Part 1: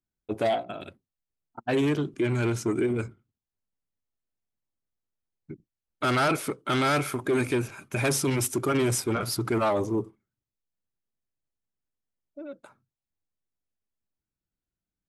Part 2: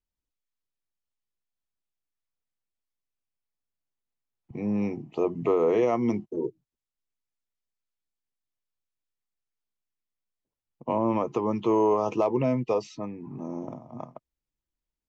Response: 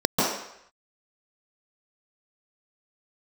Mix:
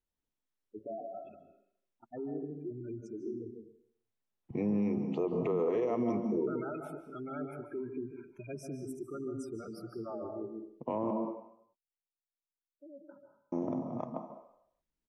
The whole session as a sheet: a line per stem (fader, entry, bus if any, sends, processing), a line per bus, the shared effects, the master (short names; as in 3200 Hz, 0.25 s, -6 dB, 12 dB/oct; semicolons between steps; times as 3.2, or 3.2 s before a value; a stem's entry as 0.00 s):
12.75 s -18.5 dB -> 13.35 s -6.5 dB, 0.45 s, send -21 dB, spectral gate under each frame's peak -10 dB strong
-0.5 dB, 0.00 s, muted 11.11–13.52, send -24 dB, compressor 3:1, threshold -29 dBFS, peak gain reduction 8 dB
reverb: on, RT60 0.75 s, pre-delay 0.135 s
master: high shelf 5000 Hz -7.5 dB; limiter -23.5 dBFS, peak gain reduction 7 dB